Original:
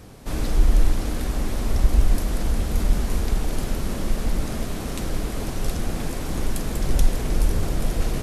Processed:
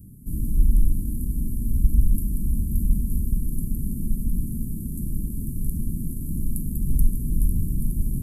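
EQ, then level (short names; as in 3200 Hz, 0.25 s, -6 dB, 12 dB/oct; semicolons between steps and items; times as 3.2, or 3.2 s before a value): inverse Chebyshev band-stop 820–3700 Hz, stop band 70 dB; low shelf 120 Hz -6 dB; +4.5 dB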